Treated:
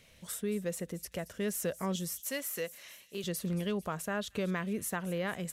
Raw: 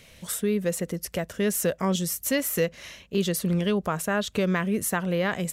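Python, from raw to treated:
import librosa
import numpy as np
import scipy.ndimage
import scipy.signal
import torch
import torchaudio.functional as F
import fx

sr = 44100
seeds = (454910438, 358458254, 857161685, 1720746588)

y = fx.highpass(x, sr, hz=530.0, slope=6, at=(2.2, 3.24))
y = fx.echo_wet_highpass(y, sr, ms=225, feedback_pct=60, hz=3400.0, wet_db=-15)
y = F.gain(torch.from_numpy(y), -9.0).numpy()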